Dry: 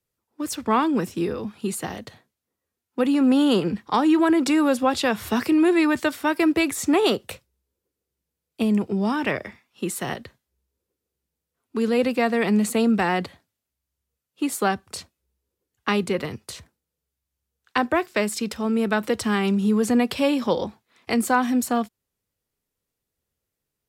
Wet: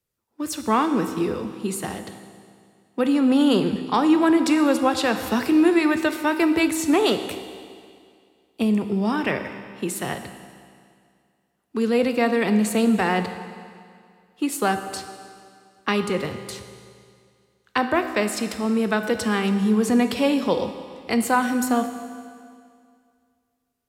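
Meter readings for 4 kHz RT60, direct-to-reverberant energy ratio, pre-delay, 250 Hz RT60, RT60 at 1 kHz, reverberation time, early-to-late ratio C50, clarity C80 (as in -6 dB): 2.1 s, 8.0 dB, 15 ms, 2.2 s, 2.2 s, 2.2 s, 9.5 dB, 10.5 dB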